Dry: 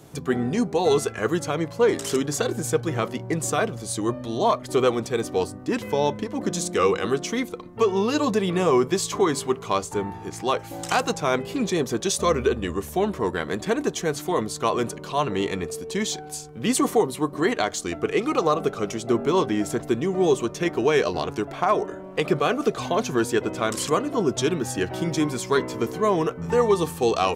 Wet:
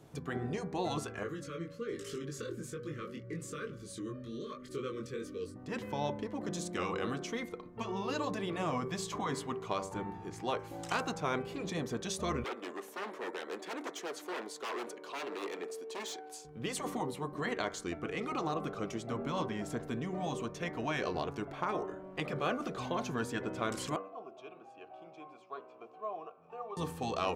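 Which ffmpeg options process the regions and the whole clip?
ffmpeg -i in.wav -filter_complex "[0:a]asettb=1/sr,asplit=3[link_01][link_02][link_03];[link_01]atrim=end=1.234[link_04];[link_02]atrim=start=1.23:end=5.56,asetpts=PTS-STARTPTS,afade=type=in:duration=0.004:curve=qsin,afade=type=out:start_time=4.326:duration=0.004:curve=qsin,acompressor=threshold=-25dB:ratio=2:attack=3.2:release=140:knee=1:detection=peak,flanger=delay=20:depth=3.1:speed=1.2,asuperstop=centerf=800:order=20:qfactor=1.6[link_05];[link_03]atrim=start=5.556[link_06];[link_04][link_05]acrossfade=duration=0.004:curve1=hsin:curve2=qsin[link_07];[link_07][link_06]acrossfade=duration=0.004:curve1=qsin:curve2=hsin,asettb=1/sr,asplit=3[link_08][link_09][link_10];[link_08]atrim=end=12.444[link_11];[link_09]atrim=start=12.44:end=16.45,asetpts=PTS-STARTPTS,afade=type=in:duration=0.004:curve=qsin,afade=type=out:start_time=4.006:duration=0.004:curve=qsin,aeval=exprs='0.0708*(abs(mod(val(0)/0.0708+3,4)-2)-1)':channel_layout=same,highpass=frequency=310:width=0.5412,highpass=frequency=310:width=1.3066[link_12];[link_10]atrim=start=16.446[link_13];[link_11][link_12]acrossfade=duration=0.004:curve1=hsin:curve2=qsin[link_14];[link_14][link_13]acrossfade=duration=0.004:curve1=qsin:curve2=hsin,asettb=1/sr,asplit=3[link_15][link_16][link_17];[link_15]atrim=end=23.964[link_18];[link_16]atrim=start=23.96:end=26.77,asetpts=PTS-STARTPTS,afade=type=in:duration=0.004:curve=qsin,afade=type=out:start_time=2.806:duration=0.004:curve=qsin,bandreject=frequency=60:width_type=h:width=6,bandreject=frequency=120:width_type=h:width=6,bandreject=frequency=180:width_type=h:width=6,bandreject=frequency=240:width_type=h:width=6,bandreject=frequency=300:width_type=h:width=6,bandreject=frequency=360:width_type=h:width=6,bandreject=frequency=420:width_type=h:width=6,bandreject=frequency=480:width_type=h:width=6,aeval=exprs='sgn(val(0))*max(abs(val(0))-0.00398,0)':channel_layout=same,asplit=3[link_19][link_20][link_21];[link_19]bandpass=frequency=730:width_type=q:width=8,volume=0dB[link_22];[link_20]bandpass=frequency=1090:width_type=q:width=8,volume=-6dB[link_23];[link_21]bandpass=frequency=2440:width_type=q:width=8,volume=-9dB[link_24];[link_22][link_23][link_24]amix=inputs=3:normalize=0[link_25];[link_17]atrim=start=26.766[link_26];[link_18][link_25]acrossfade=duration=0.004:curve1=hsin:curve2=qsin[link_27];[link_27][link_26]acrossfade=duration=0.004:curve1=qsin:curve2=hsin,bandreject=frequency=96.5:width_type=h:width=4,bandreject=frequency=193:width_type=h:width=4,bandreject=frequency=289.5:width_type=h:width=4,bandreject=frequency=386:width_type=h:width=4,bandreject=frequency=482.5:width_type=h:width=4,bandreject=frequency=579:width_type=h:width=4,bandreject=frequency=675.5:width_type=h:width=4,bandreject=frequency=772:width_type=h:width=4,bandreject=frequency=868.5:width_type=h:width=4,bandreject=frequency=965:width_type=h:width=4,bandreject=frequency=1061.5:width_type=h:width=4,bandreject=frequency=1158:width_type=h:width=4,bandreject=frequency=1254.5:width_type=h:width=4,bandreject=frequency=1351:width_type=h:width=4,bandreject=frequency=1447.5:width_type=h:width=4,bandreject=frequency=1544:width_type=h:width=4,bandreject=frequency=1640.5:width_type=h:width=4,bandreject=frequency=1737:width_type=h:width=4,bandreject=frequency=1833.5:width_type=h:width=4,bandreject=frequency=1930:width_type=h:width=4,bandreject=frequency=2026.5:width_type=h:width=4,bandreject=frequency=2123:width_type=h:width=4,bandreject=frequency=2219.5:width_type=h:width=4,bandreject=frequency=2316:width_type=h:width=4,afftfilt=real='re*lt(hypot(re,im),0.562)':imag='im*lt(hypot(re,im),0.562)':win_size=1024:overlap=0.75,highshelf=frequency=4500:gain=-8.5,volume=-8.5dB" out.wav

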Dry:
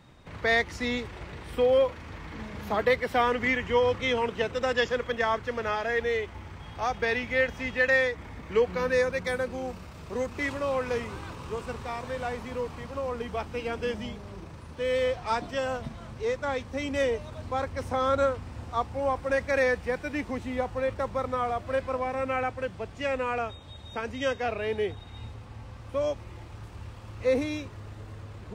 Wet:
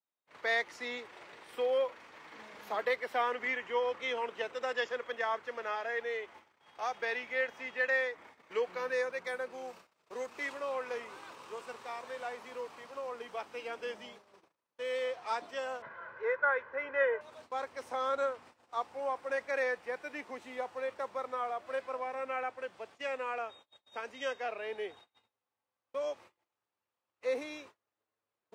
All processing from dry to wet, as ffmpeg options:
ffmpeg -i in.wav -filter_complex "[0:a]asettb=1/sr,asplit=3[link_01][link_02][link_03];[link_01]atrim=end=15.824[link_04];[link_02]atrim=start=15.82:end=17.21,asetpts=PTS-STARTPTS,afade=type=in:duration=0.004:curve=qsin,afade=type=out:start_time=1.386:duration=0.004:curve=qsin,lowpass=frequency=1600:width_type=q:width=5.2,aecho=1:1:2:0.64,atrim=end_sample=61299[link_05];[link_03]atrim=start=17.206[link_06];[link_04][link_05]acrossfade=duration=0.004:curve1=hsin:curve2=qsin[link_07];[link_07][link_06]acrossfade=duration=0.004:curve1=qsin:curve2=hsin,highpass=480,agate=range=-32dB:threshold=-47dB:ratio=16:detection=peak,adynamicequalizer=threshold=0.00794:dfrequency=2900:dqfactor=0.7:tfrequency=2900:tqfactor=0.7:attack=5:release=100:ratio=0.375:range=3:mode=cutabove:tftype=highshelf,volume=-6dB" out.wav

